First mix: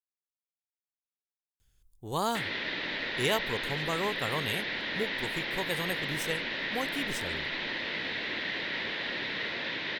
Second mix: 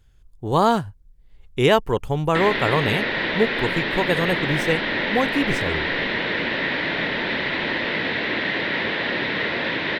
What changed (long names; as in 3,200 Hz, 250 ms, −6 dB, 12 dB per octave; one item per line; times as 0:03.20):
speech: entry −1.60 s
master: remove first-order pre-emphasis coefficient 0.8